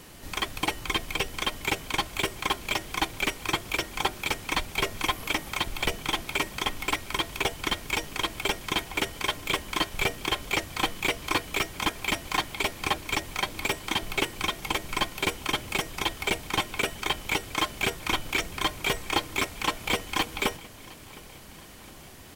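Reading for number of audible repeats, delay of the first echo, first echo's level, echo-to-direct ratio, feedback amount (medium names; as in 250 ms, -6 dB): 3, 711 ms, -22.0 dB, -20.5 dB, 55%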